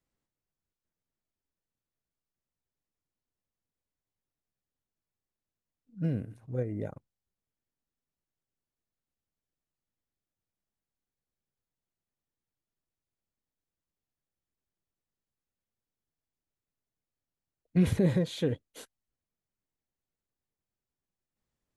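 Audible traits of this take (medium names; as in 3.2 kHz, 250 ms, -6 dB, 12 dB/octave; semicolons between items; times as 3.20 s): noise floor -92 dBFS; spectral tilt -9.0 dB/octave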